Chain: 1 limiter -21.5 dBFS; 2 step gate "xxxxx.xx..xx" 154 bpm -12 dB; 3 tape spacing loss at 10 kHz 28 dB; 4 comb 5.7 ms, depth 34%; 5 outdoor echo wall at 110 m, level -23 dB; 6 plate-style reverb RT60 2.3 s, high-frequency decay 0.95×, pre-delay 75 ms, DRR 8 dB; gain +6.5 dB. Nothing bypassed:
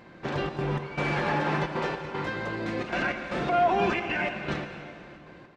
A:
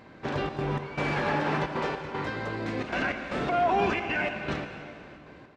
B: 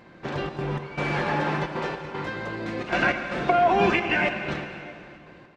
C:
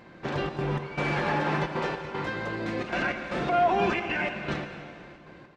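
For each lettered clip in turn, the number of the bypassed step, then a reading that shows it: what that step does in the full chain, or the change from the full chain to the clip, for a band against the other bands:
4, momentary loudness spread change -1 LU; 1, crest factor change +4.5 dB; 5, momentary loudness spread change -4 LU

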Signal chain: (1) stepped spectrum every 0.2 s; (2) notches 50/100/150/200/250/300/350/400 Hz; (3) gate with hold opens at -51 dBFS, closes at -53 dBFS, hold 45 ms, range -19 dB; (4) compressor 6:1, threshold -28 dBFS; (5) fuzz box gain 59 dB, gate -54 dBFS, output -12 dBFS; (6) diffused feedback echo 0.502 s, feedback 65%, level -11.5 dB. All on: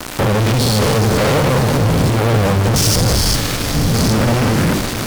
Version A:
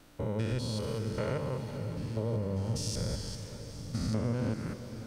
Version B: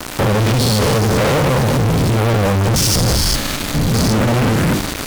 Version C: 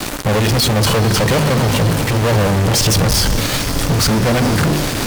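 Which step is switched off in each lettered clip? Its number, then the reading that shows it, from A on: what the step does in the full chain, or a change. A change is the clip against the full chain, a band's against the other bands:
5, distortion -2 dB; 6, echo-to-direct -9.0 dB to none; 1, 4 kHz band +2.0 dB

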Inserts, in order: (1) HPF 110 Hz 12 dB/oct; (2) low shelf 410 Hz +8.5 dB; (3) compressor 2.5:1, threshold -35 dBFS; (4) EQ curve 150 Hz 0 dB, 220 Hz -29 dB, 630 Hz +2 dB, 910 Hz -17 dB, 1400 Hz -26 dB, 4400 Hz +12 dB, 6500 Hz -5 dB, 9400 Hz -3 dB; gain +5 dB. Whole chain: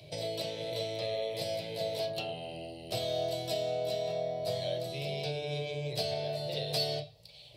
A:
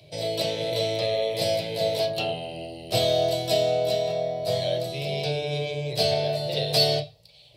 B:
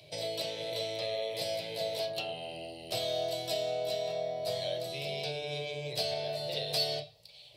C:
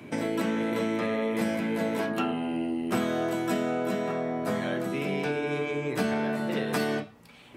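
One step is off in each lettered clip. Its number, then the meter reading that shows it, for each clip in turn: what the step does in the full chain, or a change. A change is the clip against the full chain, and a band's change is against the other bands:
3, mean gain reduction 8.5 dB; 2, 125 Hz band -6.5 dB; 4, 250 Hz band +15.0 dB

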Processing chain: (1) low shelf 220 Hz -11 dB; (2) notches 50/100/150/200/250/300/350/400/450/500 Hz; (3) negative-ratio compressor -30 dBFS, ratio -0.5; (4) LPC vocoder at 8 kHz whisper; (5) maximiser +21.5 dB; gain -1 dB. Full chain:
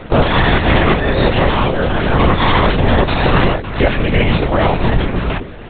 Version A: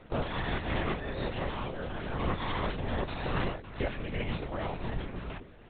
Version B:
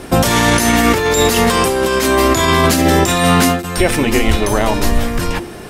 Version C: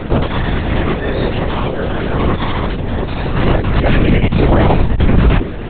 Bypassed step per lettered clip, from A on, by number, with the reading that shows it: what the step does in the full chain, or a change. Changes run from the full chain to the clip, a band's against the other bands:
5, crest factor change +4.5 dB; 4, 125 Hz band -4.5 dB; 1, 125 Hz band +5.5 dB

